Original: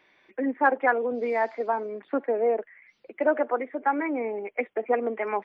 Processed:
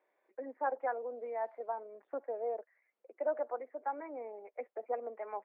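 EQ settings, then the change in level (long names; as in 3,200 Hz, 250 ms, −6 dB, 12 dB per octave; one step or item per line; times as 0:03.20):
dynamic equaliser 420 Hz, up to −6 dB, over −40 dBFS, Q 2.2
four-pole ladder band-pass 640 Hz, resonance 35%
0.0 dB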